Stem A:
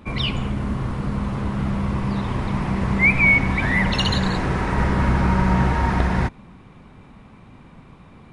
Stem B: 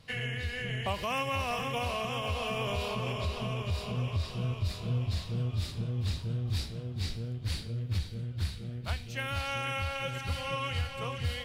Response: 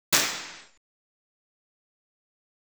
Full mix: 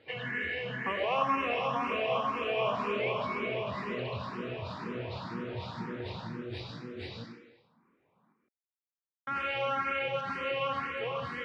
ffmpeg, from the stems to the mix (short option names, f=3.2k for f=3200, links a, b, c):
-filter_complex "[0:a]volume=-17.5dB,asplit=2[a][b];[b]volume=-5dB[c];[1:a]acontrast=72,volume=0dB,asplit=3[d][e][f];[d]atrim=end=7.24,asetpts=PTS-STARTPTS,afade=t=out:st=7.236:d=0.004:c=hsin[g];[e]atrim=start=7.24:end=9.27,asetpts=PTS-STARTPTS,volume=0[h];[f]atrim=start=9.27,asetpts=PTS-STARTPTS,afade=t=in:d=0.004:c=hsin[i];[g][h][i]concat=n=3:v=0:a=1,asplit=2[j][k];[k]volume=-22dB[l];[2:a]atrim=start_sample=2205[m];[l][m]afir=irnorm=-1:irlink=0[n];[c]aecho=0:1:159:1[o];[a][j][n][o]amix=inputs=4:normalize=0,highpass=280,lowpass=2k,equalizer=f=700:t=o:w=0.42:g=-3.5,asplit=2[p][q];[q]afreqshift=2[r];[p][r]amix=inputs=2:normalize=1"